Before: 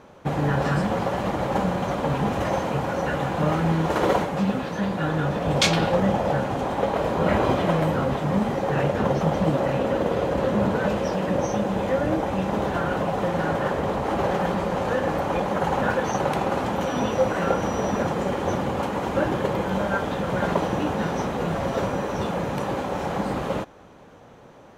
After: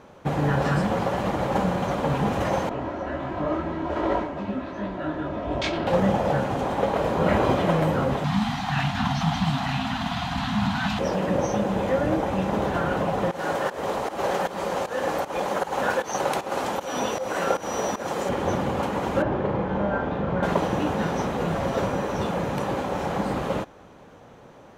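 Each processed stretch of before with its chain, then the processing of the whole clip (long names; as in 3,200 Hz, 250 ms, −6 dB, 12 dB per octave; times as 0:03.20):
0:02.69–0:05.87: head-to-tape spacing loss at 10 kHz 22 dB + comb filter 3.1 ms, depth 71% + micro pitch shift up and down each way 48 cents
0:08.24–0:10.99: Chebyshev band-stop filter 270–700 Hz, order 4 + parametric band 3,900 Hz +12 dB 1.2 octaves
0:13.31–0:18.29: bass and treble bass −11 dB, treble +7 dB + fake sidechain pumping 155 BPM, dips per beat 1, −16 dB, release 232 ms
0:19.22–0:20.43: head-to-tape spacing loss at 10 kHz 30 dB + flutter between parallel walls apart 6.8 metres, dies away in 0.38 s
whole clip: no processing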